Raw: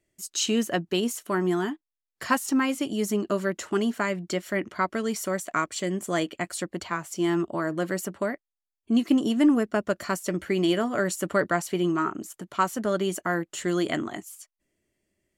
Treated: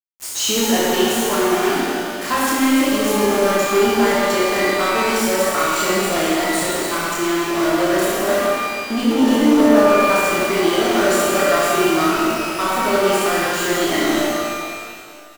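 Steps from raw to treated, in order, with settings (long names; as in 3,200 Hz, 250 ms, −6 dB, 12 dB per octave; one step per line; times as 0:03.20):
high-pass filter 250 Hz 12 dB per octave
centre clipping without the shift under −33.5 dBFS
reverse bouncing-ball delay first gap 30 ms, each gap 1.25×, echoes 5
power curve on the samples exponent 0.5
reverb with rising layers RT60 2.2 s, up +12 semitones, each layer −8 dB, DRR −4.5 dB
level −6 dB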